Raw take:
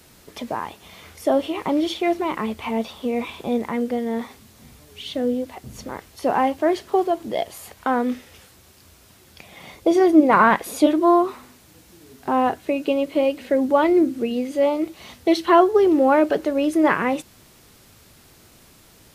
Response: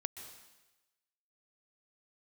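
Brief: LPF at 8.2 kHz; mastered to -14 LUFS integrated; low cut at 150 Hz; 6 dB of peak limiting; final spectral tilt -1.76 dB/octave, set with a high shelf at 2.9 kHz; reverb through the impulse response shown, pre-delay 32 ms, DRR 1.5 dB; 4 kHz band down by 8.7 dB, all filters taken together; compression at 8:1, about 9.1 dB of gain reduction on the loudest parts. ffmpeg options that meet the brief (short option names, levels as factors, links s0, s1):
-filter_complex "[0:a]highpass=150,lowpass=8200,highshelf=f=2900:g=-8,equalizer=f=4000:t=o:g=-5.5,acompressor=threshold=0.126:ratio=8,alimiter=limit=0.15:level=0:latency=1,asplit=2[s0][s1];[1:a]atrim=start_sample=2205,adelay=32[s2];[s1][s2]afir=irnorm=-1:irlink=0,volume=0.944[s3];[s0][s3]amix=inputs=2:normalize=0,volume=3.16"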